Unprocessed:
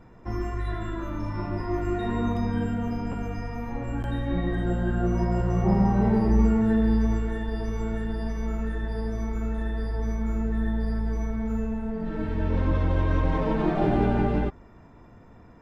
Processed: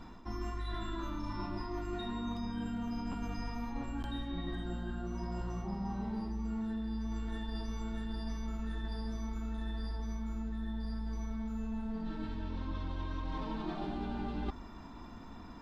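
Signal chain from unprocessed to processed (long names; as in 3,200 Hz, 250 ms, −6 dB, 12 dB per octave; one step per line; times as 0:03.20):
octave-band graphic EQ 125/250/500/1,000/2,000/4,000 Hz −11/+5/−11/+4/−6/+11 dB
reversed playback
downward compressor 16 to 1, threshold −38 dBFS, peak gain reduction 22 dB
reversed playback
level +4 dB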